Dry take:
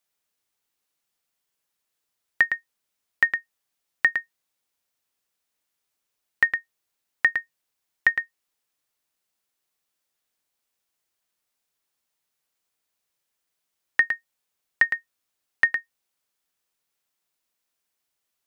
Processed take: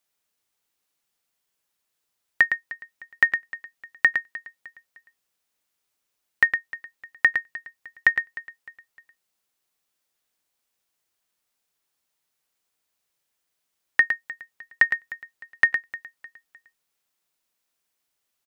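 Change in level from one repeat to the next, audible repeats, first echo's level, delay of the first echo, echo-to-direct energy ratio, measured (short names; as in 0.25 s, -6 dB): -8.5 dB, 3, -18.0 dB, 0.305 s, -17.5 dB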